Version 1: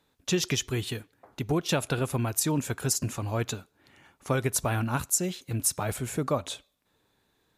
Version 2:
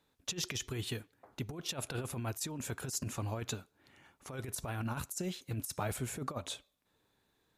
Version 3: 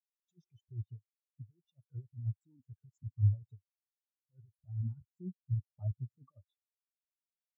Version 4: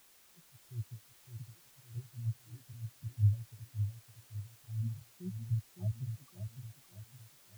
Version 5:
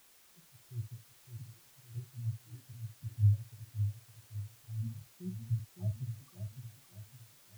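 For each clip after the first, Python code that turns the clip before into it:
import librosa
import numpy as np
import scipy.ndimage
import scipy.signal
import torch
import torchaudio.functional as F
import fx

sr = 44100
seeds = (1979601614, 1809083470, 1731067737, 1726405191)

y1 = fx.over_compress(x, sr, threshold_db=-29.0, ratio=-0.5)
y1 = y1 * 10.0 ** (-7.5 / 20.0)
y2 = fx.peak_eq(y1, sr, hz=100.0, db=3.5, octaves=0.48)
y2 = fx.spectral_expand(y2, sr, expansion=4.0)
y2 = y2 * 10.0 ** (1.0 / 20.0)
y3 = fx.dmg_noise_colour(y2, sr, seeds[0], colour='white', level_db=-63.0)
y3 = fx.echo_feedback(y3, sr, ms=561, feedback_pct=39, wet_db=-7.5)
y4 = fx.doubler(y3, sr, ms=49.0, db=-10.5)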